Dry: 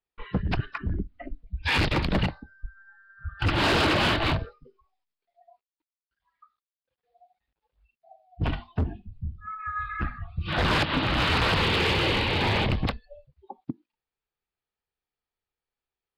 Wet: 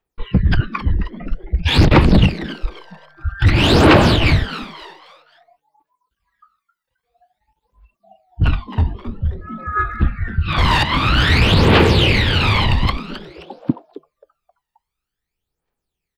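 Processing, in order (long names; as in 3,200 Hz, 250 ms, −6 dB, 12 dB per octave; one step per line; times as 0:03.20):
echo with shifted repeats 265 ms, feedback 39%, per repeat +150 Hz, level −11.5 dB
phase shifter 0.51 Hz, delay 1.1 ms, feedback 69%
level +5.5 dB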